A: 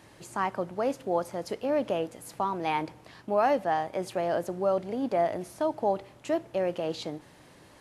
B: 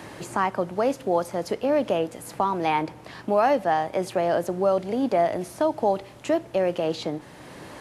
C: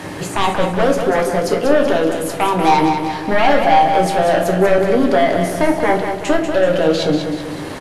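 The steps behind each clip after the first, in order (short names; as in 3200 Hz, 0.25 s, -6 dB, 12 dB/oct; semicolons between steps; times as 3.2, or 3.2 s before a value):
three-band squash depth 40%; gain +5 dB
sine folder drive 8 dB, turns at -9.5 dBFS; feedback echo 0.19 s, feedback 50%, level -7 dB; shoebox room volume 44 m³, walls mixed, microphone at 0.5 m; gain -2.5 dB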